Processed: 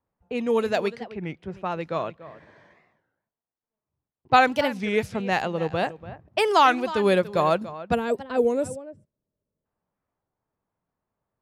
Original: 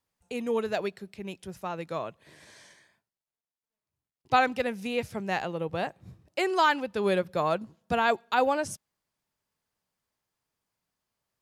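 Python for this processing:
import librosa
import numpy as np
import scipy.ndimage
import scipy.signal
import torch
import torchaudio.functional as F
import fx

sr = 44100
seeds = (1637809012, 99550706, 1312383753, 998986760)

y = fx.spec_box(x, sr, start_s=7.95, length_s=1.7, low_hz=650.0, high_hz=7200.0, gain_db=-14)
y = y + 10.0 ** (-15.5 / 20.0) * np.pad(y, (int(289 * sr / 1000.0), 0))[:len(y)]
y = fx.env_lowpass(y, sr, base_hz=1100.0, full_db=-25.0)
y = fx.record_warp(y, sr, rpm=33.33, depth_cents=250.0)
y = y * 10.0 ** (5.5 / 20.0)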